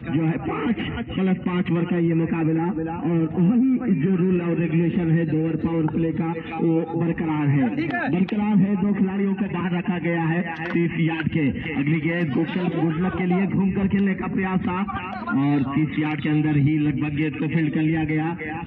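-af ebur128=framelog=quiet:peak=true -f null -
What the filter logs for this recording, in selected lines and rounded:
Integrated loudness:
  I:         -22.5 LUFS
  Threshold: -32.5 LUFS
Loudness range:
  LRA:         1.9 LU
  Threshold: -42.4 LUFS
  LRA low:   -23.2 LUFS
  LRA high:  -21.3 LUFS
True peak:
  Peak:       -9.9 dBFS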